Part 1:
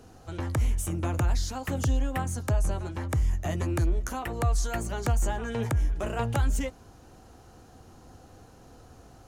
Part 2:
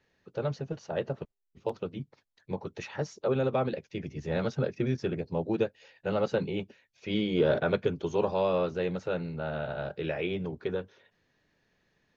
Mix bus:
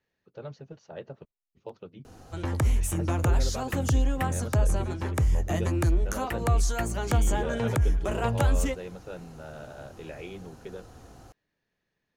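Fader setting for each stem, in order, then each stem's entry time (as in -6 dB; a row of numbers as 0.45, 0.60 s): +2.0, -9.0 dB; 2.05, 0.00 s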